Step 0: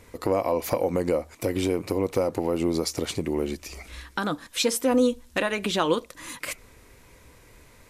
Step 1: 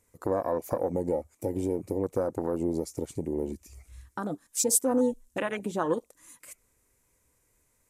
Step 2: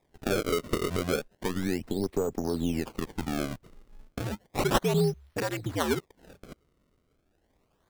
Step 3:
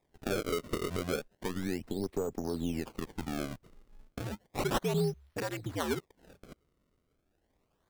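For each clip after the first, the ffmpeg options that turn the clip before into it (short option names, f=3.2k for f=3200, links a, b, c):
-af "highshelf=f=5.6k:t=q:w=1.5:g=9.5,afwtdn=0.0447,volume=-4dB"
-af "afreqshift=-86,acrusher=samples=30:mix=1:aa=0.000001:lfo=1:lforange=48:lforate=0.33"
-af "volume=17dB,asoftclip=hard,volume=-17dB,volume=-5dB"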